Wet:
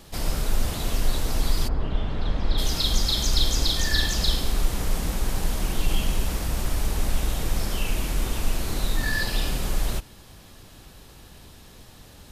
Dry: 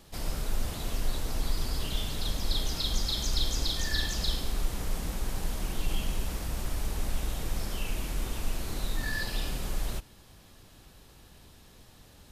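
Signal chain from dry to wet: 1.67–2.57 s: low-pass 1.2 kHz -> 2.4 kHz 12 dB/octave; trim +7 dB

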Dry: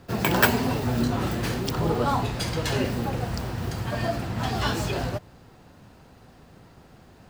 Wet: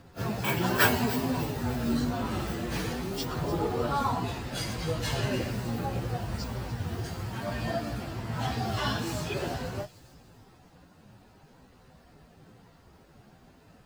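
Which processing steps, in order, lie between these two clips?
feedback echo behind a high-pass 156 ms, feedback 44%, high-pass 5.1 kHz, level -10 dB; plain phase-vocoder stretch 1.9×; trim -2 dB

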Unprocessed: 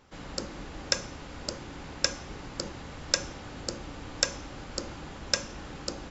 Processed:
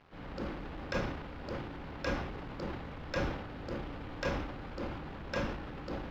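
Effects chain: transient shaper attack -5 dB, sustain +9 dB; companded quantiser 4-bit; distance through air 350 m; trim -1.5 dB

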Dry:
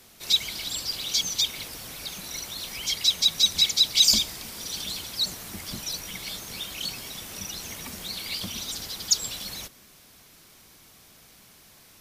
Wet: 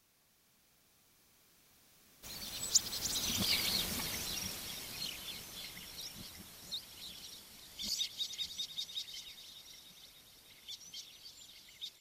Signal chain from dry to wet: reverse the whole clip; Doppler pass-by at 3.65 s, 15 m/s, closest 7.1 m; feedback echo behind a high-pass 297 ms, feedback 66%, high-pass 2.1 kHz, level -12 dB

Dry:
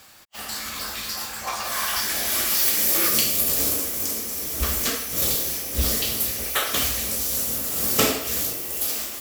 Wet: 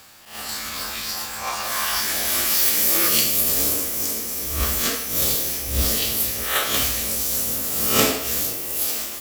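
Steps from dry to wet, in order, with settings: reverse spectral sustain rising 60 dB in 0.49 s

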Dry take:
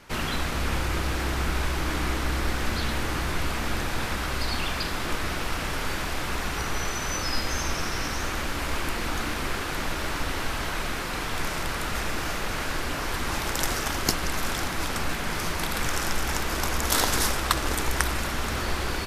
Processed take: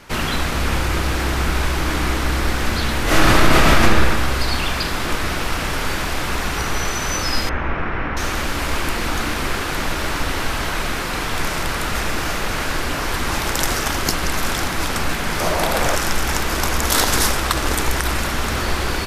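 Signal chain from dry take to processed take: 3.04–3.82 s: reverb throw, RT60 1.6 s, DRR -11 dB; 7.49–8.17 s: low-pass 2.3 kHz 24 dB/octave; 15.40–15.95 s: peaking EQ 620 Hz +11.5 dB 0.92 oct; loudness maximiser +8 dB; trim -1 dB

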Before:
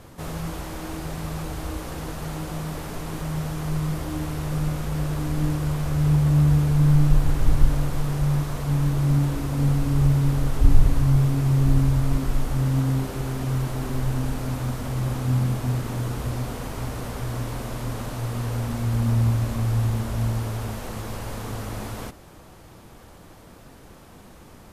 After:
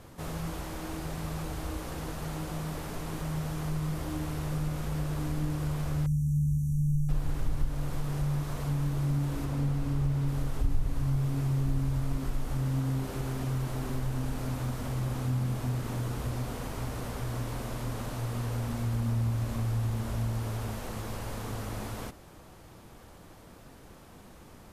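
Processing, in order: compression 2:1, threshold -24 dBFS, peak gain reduction 9.5 dB; 6.06–7.09 s: brick-wall FIR band-stop 260–5600 Hz; 9.45–10.28 s: treble shelf 5.5 kHz -5 dB; trim -4.5 dB

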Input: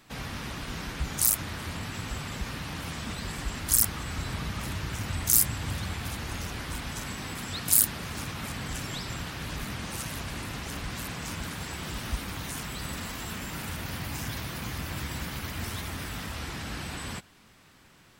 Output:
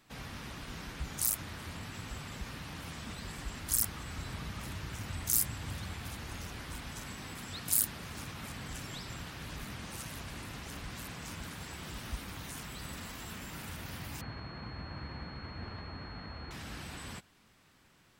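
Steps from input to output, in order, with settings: 14.21–16.51 s: class-D stage that switches slowly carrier 4.3 kHz; trim -7.5 dB

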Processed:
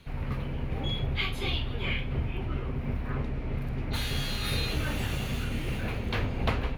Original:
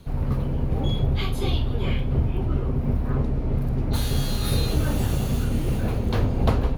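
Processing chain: peaking EQ 2.3 kHz +14 dB 1.6 oct; trim -8.5 dB

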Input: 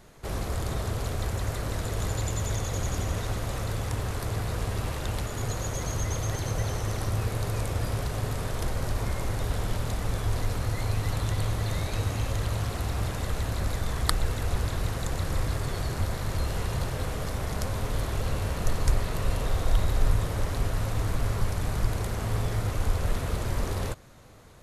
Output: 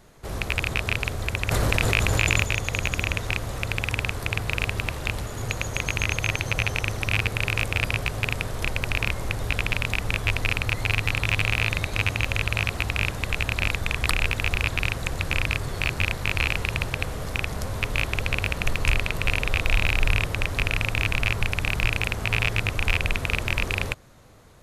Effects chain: rattle on loud lows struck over -25 dBFS, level -8 dBFS; 1.51–2.44 s: level flattener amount 100%

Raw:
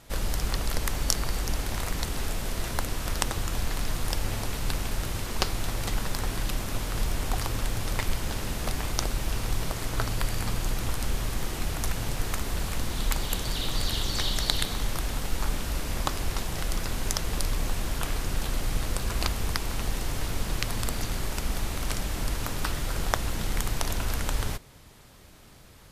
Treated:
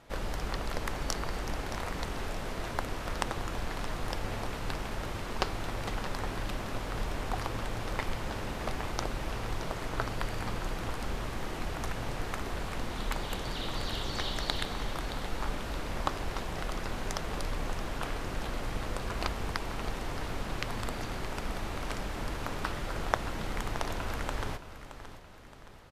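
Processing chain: low-pass 1.5 kHz 6 dB/octave; bass shelf 240 Hz -9.5 dB; on a send: feedback delay 621 ms, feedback 47%, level -13 dB; on the sum: trim +1.5 dB

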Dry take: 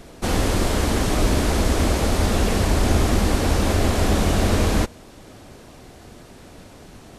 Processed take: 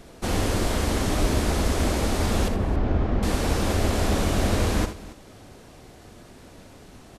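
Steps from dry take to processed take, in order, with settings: 2.48–3.23 s: tape spacing loss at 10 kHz 41 dB; on a send: multi-tap echo 41/61/80/278 ms -16.5/-12/-13/-18 dB; on the sum: trim -4 dB

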